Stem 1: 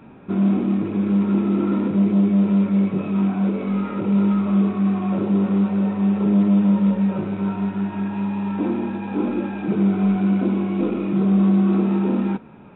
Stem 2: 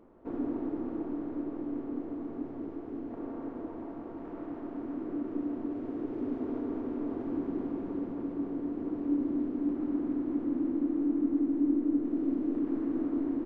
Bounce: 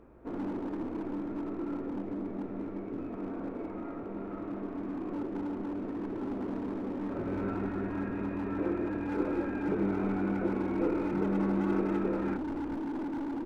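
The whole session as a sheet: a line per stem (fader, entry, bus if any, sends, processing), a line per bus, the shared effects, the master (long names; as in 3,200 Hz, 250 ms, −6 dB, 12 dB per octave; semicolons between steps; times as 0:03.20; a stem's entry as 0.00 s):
0:06.93 −15 dB → 0:07.35 −3.5 dB, 0.00 s, no send, mains hum 60 Hz, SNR 27 dB; phaser with its sweep stopped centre 870 Hz, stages 6
+1.0 dB, 0.00 s, no send, hard clipping −34 dBFS, distortion −7 dB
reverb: not used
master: no processing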